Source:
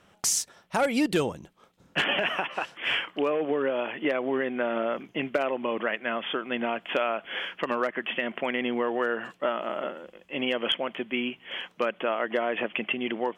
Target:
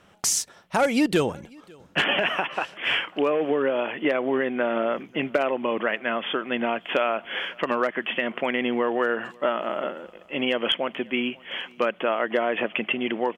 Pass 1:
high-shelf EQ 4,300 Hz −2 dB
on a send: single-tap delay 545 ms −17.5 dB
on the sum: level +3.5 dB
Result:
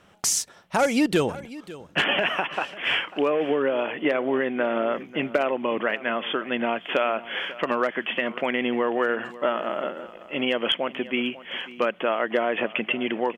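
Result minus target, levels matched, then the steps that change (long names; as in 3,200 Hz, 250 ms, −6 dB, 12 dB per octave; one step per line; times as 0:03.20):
echo-to-direct +9 dB
change: single-tap delay 545 ms −26.5 dB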